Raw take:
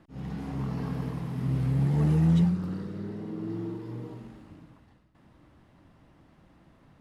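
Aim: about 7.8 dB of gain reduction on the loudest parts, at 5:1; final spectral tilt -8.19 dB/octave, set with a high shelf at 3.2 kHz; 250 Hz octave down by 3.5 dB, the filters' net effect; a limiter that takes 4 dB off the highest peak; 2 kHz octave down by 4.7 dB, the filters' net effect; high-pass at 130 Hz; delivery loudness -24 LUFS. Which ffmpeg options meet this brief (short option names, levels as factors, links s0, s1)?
-af "highpass=130,equalizer=f=250:t=o:g=-4.5,equalizer=f=2000:t=o:g=-3,highshelf=f=3200:g=-9,acompressor=threshold=0.0282:ratio=5,volume=5.31,alimiter=limit=0.178:level=0:latency=1"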